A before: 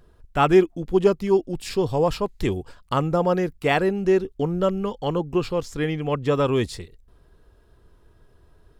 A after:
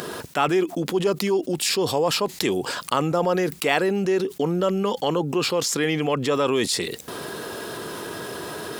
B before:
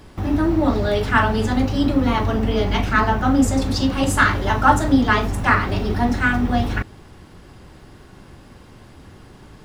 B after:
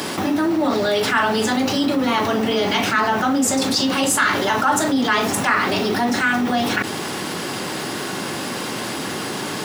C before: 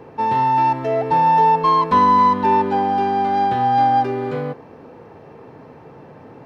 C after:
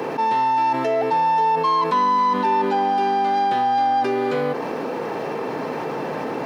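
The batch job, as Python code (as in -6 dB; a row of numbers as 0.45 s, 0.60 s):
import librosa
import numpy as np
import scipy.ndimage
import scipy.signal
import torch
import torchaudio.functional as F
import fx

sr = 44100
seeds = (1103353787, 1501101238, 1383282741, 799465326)

y = scipy.signal.sosfilt(scipy.signal.bessel(4, 240.0, 'highpass', norm='mag', fs=sr, output='sos'), x)
y = fx.high_shelf(y, sr, hz=2800.0, db=7.5)
y = fx.env_flatten(y, sr, amount_pct=70)
y = F.gain(torch.from_numpy(y), -6.0).numpy()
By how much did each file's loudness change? -1.0 LU, -1.0 LU, -4.0 LU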